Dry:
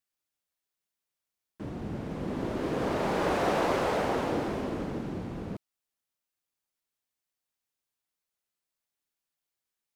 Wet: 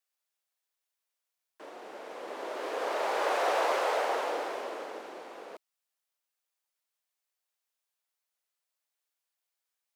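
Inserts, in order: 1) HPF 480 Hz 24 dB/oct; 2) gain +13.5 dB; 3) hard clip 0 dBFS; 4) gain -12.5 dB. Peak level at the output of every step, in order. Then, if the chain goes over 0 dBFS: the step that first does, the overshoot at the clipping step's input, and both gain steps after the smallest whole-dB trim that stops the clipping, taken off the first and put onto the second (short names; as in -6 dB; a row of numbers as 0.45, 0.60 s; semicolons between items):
-18.0, -4.5, -4.5, -17.0 dBFS; no overload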